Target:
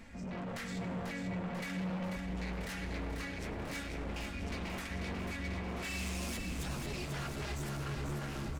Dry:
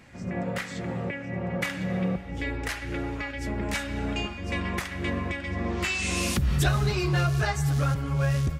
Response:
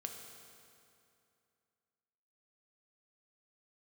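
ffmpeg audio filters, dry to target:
-filter_complex "[0:a]lowshelf=f=66:g=11.5,aecho=1:1:4.4:0.39,areverse,acompressor=mode=upward:threshold=-36dB:ratio=2.5,areverse,alimiter=limit=-20dB:level=0:latency=1:release=155,aeval=exprs='0.0447*(abs(mod(val(0)/0.0447+3,4)-2)-1)':c=same,flanger=delay=3.4:depth=8:regen=-48:speed=0.47:shape=sinusoidal,asoftclip=type=tanh:threshold=-37.5dB,aecho=1:1:492|984|1476|1968|2460|2952|3444|3936:0.531|0.308|0.179|0.104|0.0601|0.0348|0.0202|0.0117,asplit=2[a][b];[1:a]atrim=start_sample=2205,adelay=99[c];[b][c]afir=irnorm=-1:irlink=0,volume=-13.5dB[d];[a][d]amix=inputs=2:normalize=0"

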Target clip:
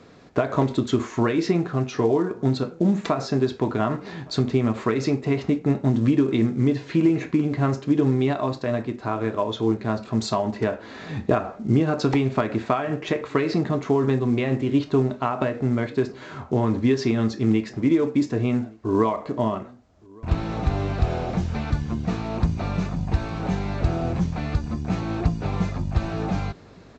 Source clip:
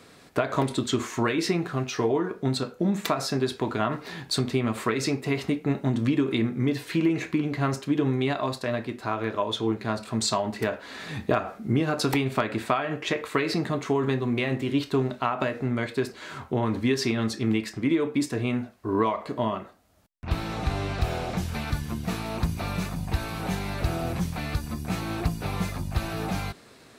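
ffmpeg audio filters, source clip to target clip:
-filter_complex "[0:a]tiltshelf=f=1.3k:g=5,asplit=2[a][b];[b]adelay=1166,volume=-26dB,highshelf=f=4k:g=-26.2[c];[a][c]amix=inputs=2:normalize=0" -ar 16000 -c:a pcm_mulaw

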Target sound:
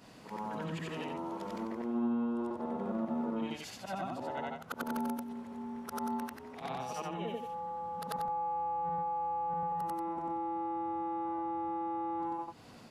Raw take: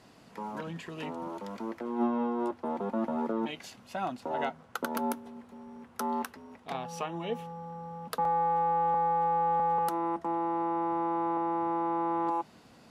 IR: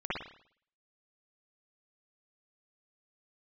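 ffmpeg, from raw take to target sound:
-filter_complex "[0:a]afftfilt=real='re':imag='-im':win_size=8192:overlap=0.75,acrossover=split=180[a][b];[b]acompressor=threshold=-44dB:ratio=4[c];[a][c]amix=inputs=2:normalize=0,volume=7dB"

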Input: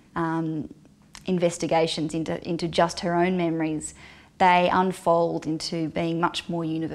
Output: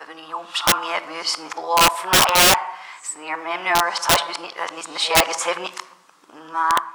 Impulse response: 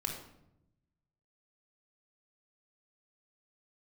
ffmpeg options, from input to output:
-filter_complex "[0:a]areverse,asplit=2[a][b];[1:a]atrim=start_sample=2205,asetrate=43218,aresample=44100[c];[b][c]afir=irnorm=-1:irlink=0,volume=-9dB[d];[a][d]amix=inputs=2:normalize=0,dynaudnorm=f=150:g=11:m=9dB,highpass=f=1.1k:t=q:w=4.2,aeval=exprs='(mod(2.66*val(0)+1,2)-1)/2.66':c=same,volume=1dB"

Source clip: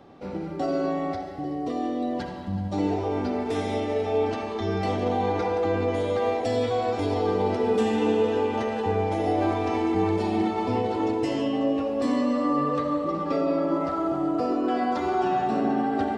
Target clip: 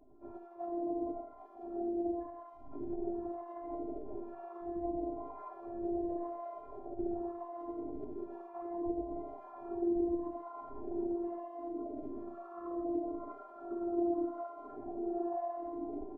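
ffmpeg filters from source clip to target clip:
-filter_complex "[0:a]lowpass=f=1k:w=0.5412,lowpass=f=1k:w=1.3066,acompressor=threshold=-28dB:ratio=6,afftfilt=real='hypot(re,im)*cos(2*PI*random(0))':imag='hypot(re,im)*sin(2*PI*random(1))':win_size=512:overlap=0.75,acrossover=split=670[a][b];[a]aeval=exprs='val(0)*(1-1/2+1/2*cos(2*PI*1*n/s))':c=same[c];[b]aeval=exprs='val(0)*(1-1/2-1/2*cos(2*PI*1*n/s))':c=same[d];[c][d]amix=inputs=2:normalize=0,afftfilt=real='hypot(re,im)*cos(PI*b)':imag='0':win_size=512:overlap=0.75,asplit=2[e][f];[f]adelay=4.5,afreqshift=-0.75[g];[e][g]amix=inputs=2:normalize=1,volume=9.5dB"

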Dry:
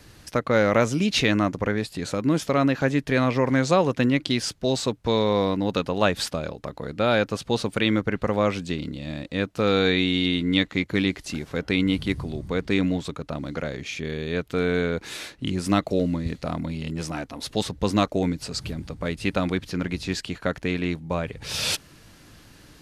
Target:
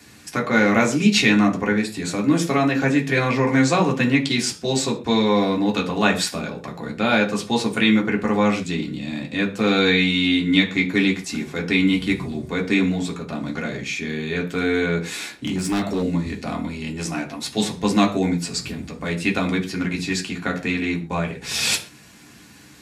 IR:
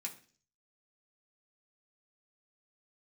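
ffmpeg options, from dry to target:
-filter_complex "[1:a]atrim=start_sample=2205,atrim=end_sample=6615[a];[0:a][a]afir=irnorm=-1:irlink=0,asettb=1/sr,asplit=3[b][c][d];[b]atrim=end=15.124[e];[c]atrim=start=15.12:end=16.03,asetpts=PTS-STARTPTS,afade=t=in:d=0.004:c=qsin,afade=t=out:st=0.906:d=0.004:c=qsin,asoftclip=type=hard:threshold=-26dB[f];[d]atrim=start=16.026[g];[e][f]acrossfade=d=0.004:c1=hsin:c2=qsin[h];[h][g]acrossfade=d=0.004:c1=qsin:c2=hsin,volume=7dB"

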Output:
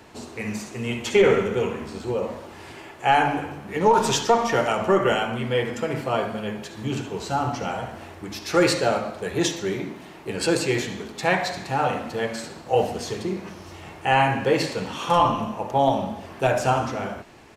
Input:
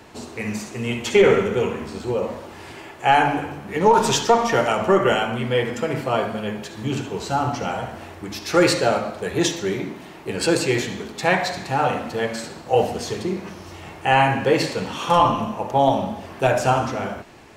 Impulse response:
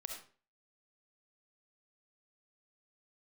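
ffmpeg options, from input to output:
-af "aresample=32000,aresample=44100,volume=-2.5dB"

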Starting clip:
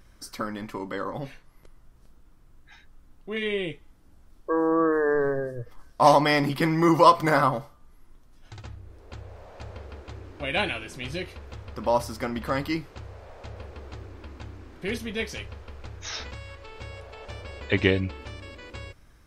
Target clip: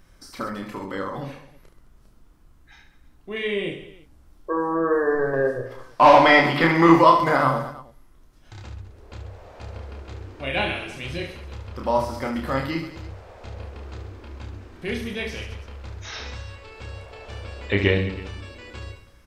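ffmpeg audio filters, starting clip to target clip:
-filter_complex "[0:a]asettb=1/sr,asplit=3[a][b][c];[a]atrim=end=5.334[d];[b]atrim=start=5.33:end=6.96,asetpts=PTS-STARTPTS,afade=t=in:d=0.004:c=qsin,afade=t=out:st=1.626:d=0.004:c=qsin,asplit=2[e][f];[f]highpass=f=720:p=1,volume=16dB,asoftclip=type=tanh:threshold=-5dB[g];[e][g]amix=inputs=2:normalize=0,lowpass=f=3.4k:p=1,volume=-6dB[h];[c]atrim=start=6.956[i];[d][h]acrossfade=d=0.004:c1=hsin:c2=qsin[j];[j][i]acrossfade=d=0.004:c1=qsin:c2=hsin,aecho=1:1:30|72|130.8|213.1|328.4:0.631|0.398|0.251|0.158|0.1,acrossover=split=4400[k][l];[l]acompressor=threshold=-46dB:ratio=4:attack=1:release=60[m];[k][m]amix=inputs=2:normalize=0"

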